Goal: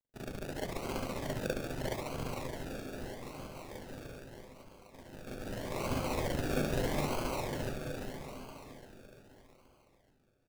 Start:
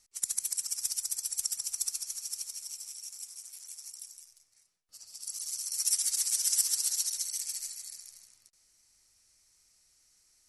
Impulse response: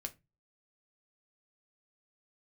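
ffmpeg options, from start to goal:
-filter_complex "[0:a]acrossover=split=6000[a][b];[b]acompressor=threshold=-46dB:ratio=4:attack=1:release=60[c];[a][c]amix=inputs=2:normalize=0,aeval=exprs='sgn(val(0))*max(abs(val(0))-0.00106,0)':c=same,aecho=1:1:343|686|1029|1372|1715|2058|2401|2744:0.562|0.337|0.202|0.121|0.0729|0.0437|0.0262|0.0157,acrusher=samples=34:mix=1:aa=0.000001:lfo=1:lforange=20.4:lforate=0.8,asplit=2[d][e];[1:a]atrim=start_sample=2205,adelay=40[f];[e][f]afir=irnorm=-1:irlink=0,volume=6dB[g];[d][g]amix=inputs=2:normalize=0,volume=-2dB"

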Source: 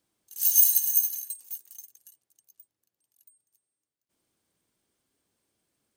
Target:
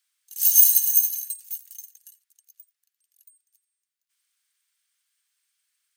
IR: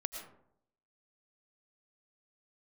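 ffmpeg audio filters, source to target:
-filter_complex "[0:a]highpass=f=1.5k:w=0.5412,highpass=f=1.5k:w=1.3066[a];[1:a]atrim=start_sample=2205,atrim=end_sample=3969[b];[a][b]afir=irnorm=-1:irlink=0,volume=5.5dB"

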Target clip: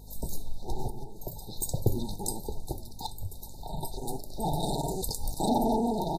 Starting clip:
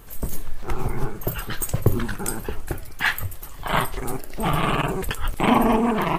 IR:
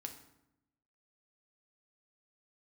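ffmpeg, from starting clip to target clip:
-filter_complex "[0:a]aeval=exprs='val(0)+0.01*(sin(2*PI*50*n/s)+sin(2*PI*2*50*n/s)/2+sin(2*PI*3*50*n/s)/3+sin(2*PI*4*50*n/s)/4+sin(2*PI*5*50*n/s)/5)':c=same,asettb=1/sr,asplit=3[a][b][c];[a]atrim=end=3.064[d];[b]atrim=start=3.06:end=3.83,asetpts=PTS-STARTPTS,afade=t=in:d=0.004:c=qsin,afade=t=out:st=0.766:d=0.004:c=qsin,acrossover=split=180[e][f];[f]acompressor=threshold=-31dB:ratio=10[g];[e][g]amix=inputs=2:normalize=0[h];[c]atrim=start=3.826[i];[d][h]acrossfade=d=0.004:c1=hsin:c2=qsin[j];[j][i]acrossfade=d=0.004:c1=qsin:c2=hsin,asettb=1/sr,asplit=3[k][l][m];[k]atrim=end=4.604[n];[l]atrim=start=4.6:end=5.49,asetpts=PTS-STARTPTS,afade=t=in:d=0.004:c=qsin,afade=t=out:st=0.886:d=0.004:c=qsin,highshelf=f=3.7k:t=q:w=1.5:g=6.5[o];[m]atrim=start=5.486[p];[n][o]acrossfade=d=0.004:c1=hsin:c2=qsin[q];[q][p]acrossfade=d=0.004:c1=qsin:c2=hsin,aeval=exprs='clip(val(0),-1,0.224)':c=same,equalizer=f=2.6k:w=0.6:g=11.5,asplit=2[r][s];[s]aecho=0:1:831:0.0944[t];[r][t]amix=inputs=2:normalize=0,asettb=1/sr,asplit=3[u][v][w];[u]atrim=end=0.884[x];[v]atrim=start=0.88:end=1.56,asetpts=PTS-STARTPTS,afade=t=in:d=0.004:c=qsin,afade=t=out:st=0.676:d=0.004:c=qsin,acompressor=threshold=-24dB:ratio=12[y];[w]atrim=start=1.556[z];[x][y]acrossfade=d=0.004:c1=hsin:c2=qsin[aa];[aa][z]acrossfade=d=0.004:c1=qsin:c2=hsin,afftfilt=real='re*(1-between(b*sr/4096,940,3600))':imag='im*(1-between(b*sr/4096,940,3600))':win_size=4096:overlap=0.75,volume=-7.5dB"

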